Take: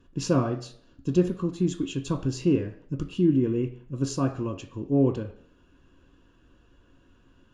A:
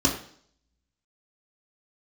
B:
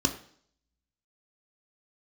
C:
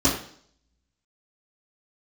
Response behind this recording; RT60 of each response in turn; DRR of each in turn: B; 0.55, 0.55, 0.55 s; -3.0, 4.0, -11.5 dB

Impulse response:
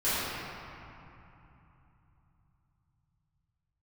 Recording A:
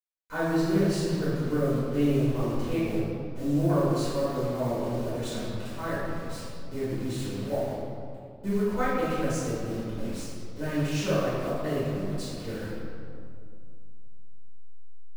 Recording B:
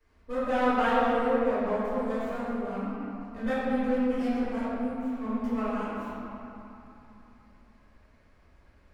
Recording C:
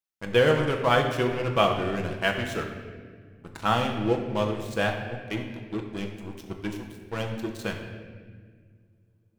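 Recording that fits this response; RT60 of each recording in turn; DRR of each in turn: B; 2.3, 3.0, 1.7 s; -13.5, -15.5, 2.0 dB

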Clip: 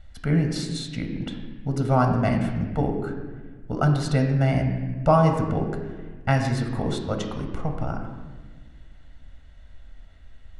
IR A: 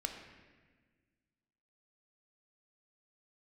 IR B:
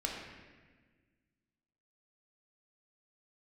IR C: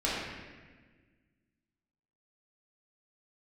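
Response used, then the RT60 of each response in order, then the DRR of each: A; 1.5, 1.5, 1.5 s; 3.5, -1.5, -8.5 dB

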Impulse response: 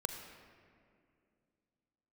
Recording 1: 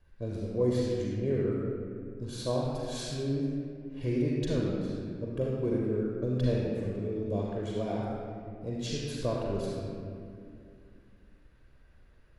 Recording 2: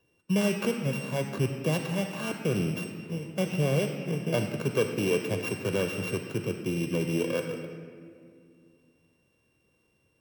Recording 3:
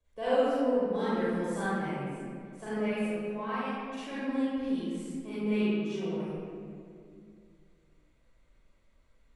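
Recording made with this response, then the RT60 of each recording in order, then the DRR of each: 2; 2.4, 2.4, 2.4 s; -4.0, 5.0, -13.0 dB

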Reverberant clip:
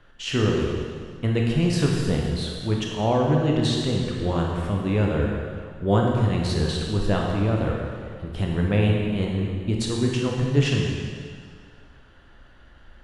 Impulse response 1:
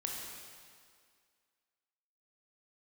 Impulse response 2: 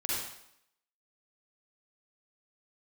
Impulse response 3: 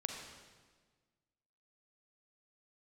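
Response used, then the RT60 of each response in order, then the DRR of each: 1; 2.0, 0.75, 1.5 s; -1.0, -7.0, 2.0 dB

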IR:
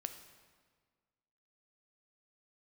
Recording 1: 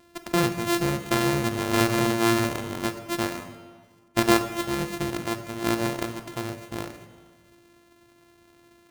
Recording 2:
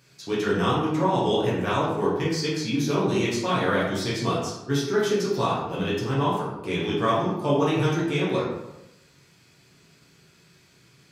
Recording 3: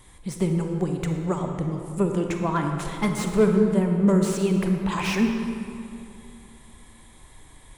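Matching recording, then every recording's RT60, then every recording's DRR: 1; 1.6, 0.90, 2.7 s; 7.5, -7.5, 3.5 dB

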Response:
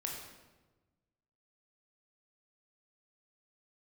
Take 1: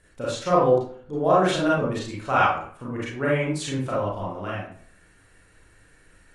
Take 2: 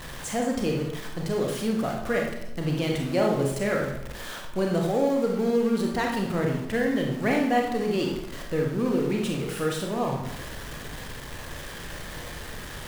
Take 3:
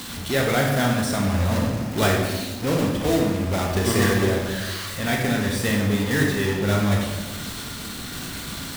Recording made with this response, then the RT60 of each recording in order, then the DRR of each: 3; 0.50, 0.85, 1.2 s; -7.0, 0.0, -1.0 dB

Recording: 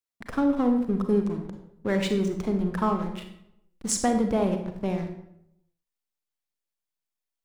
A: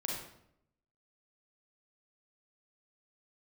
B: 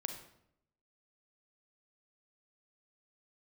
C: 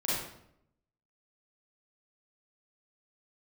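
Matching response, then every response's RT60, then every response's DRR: B; 0.75, 0.75, 0.75 s; -2.5, 5.0, -9.0 dB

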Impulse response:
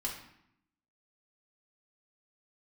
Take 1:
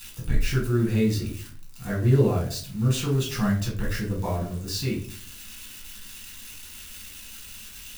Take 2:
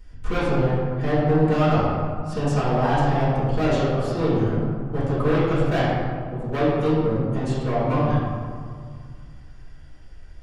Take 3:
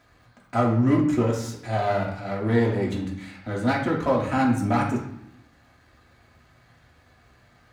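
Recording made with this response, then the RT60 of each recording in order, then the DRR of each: 3; 0.45, 2.0, 0.75 s; -4.0, -14.0, -4.0 dB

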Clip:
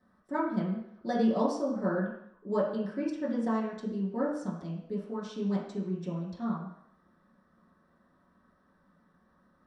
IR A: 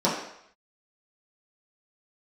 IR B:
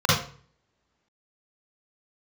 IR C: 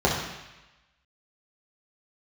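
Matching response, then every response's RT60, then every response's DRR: A; 0.70, 0.45, 1.0 s; -8.5, -8.0, -5.0 dB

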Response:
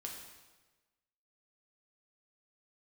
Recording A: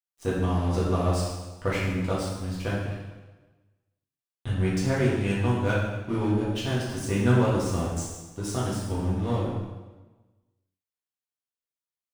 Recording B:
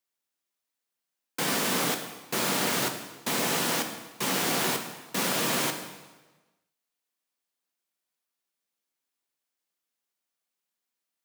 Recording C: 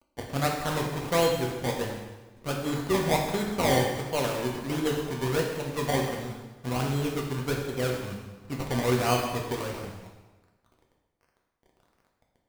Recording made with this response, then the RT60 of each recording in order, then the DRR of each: C; 1.2, 1.2, 1.2 s; -8.0, 4.5, -0.5 dB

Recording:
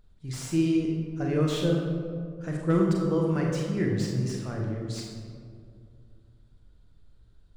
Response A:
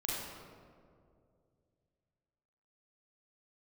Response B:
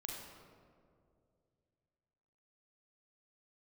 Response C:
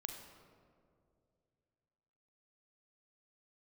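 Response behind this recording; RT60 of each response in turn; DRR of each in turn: B; 2.3, 2.4, 2.4 s; -5.5, -1.0, 4.5 dB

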